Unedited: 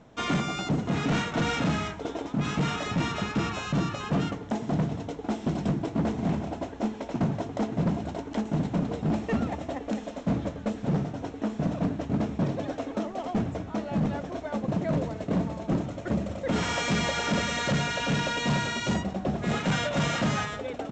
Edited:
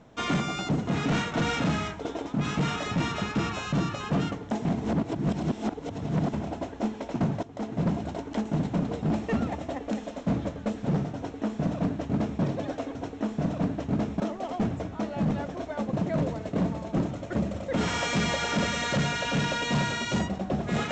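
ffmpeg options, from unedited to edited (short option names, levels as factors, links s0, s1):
-filter_complex "[0:a]asplit=6[s0][s1][s2][s3][s4][s5];[s0]atrim=end=4.652[s6];[s1]atrim=start=4.648:end=6.332,asetpts=PTS-STARTPTS,areverse[s7];[s2]atrim=start=6.328:end=7.43,asetpts=PTS-STARTPTS,afade=t=out:st=1.098:d=0.004:c=hsin:silence=0.211349[s8];[s3]atrim=start=7.43:end=12.952,asetpts=PTS-STARTPTS,afade=t=in:d=0.43:silence=0.211349[s9];[s4]atrim=start=11.158:end=12.412[s10];[s5]atrim=start=12.948[s11];[s6][s7]acrossfade=d=0.004:c1=hsin:c2=hsin[s12];[s8][s9]concat=n=2:v=0:a=1[s13];[s12][s13]acrossfade=d=0.004:c1=hsin:c2=hsin[s14];[s14][s10]acrossfade=d=0.004:c1=hsin:c2=hsin[s15];[s15][s11]acrossfade=d=0.004:c1=hsin:c2=hsin"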